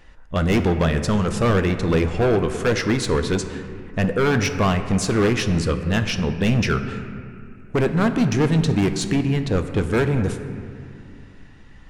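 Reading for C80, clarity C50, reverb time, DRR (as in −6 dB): 10.0 dB, 9.0 dB, 2.4 s, 7.5 dB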